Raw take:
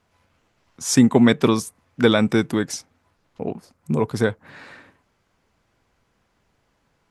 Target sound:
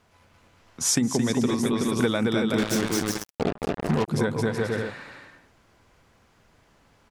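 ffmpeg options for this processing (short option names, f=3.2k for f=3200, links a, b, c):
-filter_complex "[0:a]asettb=1/sr,asplit=3[a][b][c];[a]atrim=end=1.104[d];[b]atrim=start=1.1:end=1.51,asetpts=PTS-STARTPTS,afade=t=in:d=0.004:c=qsin,afade=t=out:st=0.406:d=0.004:c=qsin,acrossover=split=440|3000[e][f][g];[f]acompressor=threshold=-29dB:ratio=2.5[h];[e][h][g]amix=inputs=3:normalize=0[i];[c]atrim=start=1.506[j];[d][i]acrossfade=d=0.004:c1=hsin:c2=qsin[k];[k][j]acrossfade=d=0.004:c1=qsin:c2=hsin,aecho=1:1:220|374|481.8|557.3|610.1:0.631|0.398|0.251|0.158|0.1,acompressor=threshold=-25dB:ratio=8,bandreject=f=66.41:t=h:w=4,bandreject=f=132.82:t=h:w=4,bandreject=f=199.23:t=h:w=4,bandreject=f=265.64:t=h:w=4,bandreject=f=332.05:t=h:w=4,asettb=1/sr,asplit=3[l][m][n];[l]atrim=end=2.584[o];[m]atrim=start=2.58:end=4.08,asetpts=PTS-STARTPTS,afade=t=in:d=0.004:c=qsin,afade=t=out:st=1.496:d=0.004:c=qsin,acrusher=bits=4:mix=0:aa=0.5[p];[n]atrim=start=4.076[q];[o][p]acrossfade=d=0.004:c1=hsin:c2=qsin[r];[r][q]acrossfade=d=0.004:c1=qsin:c2=hsin,volume=5dB"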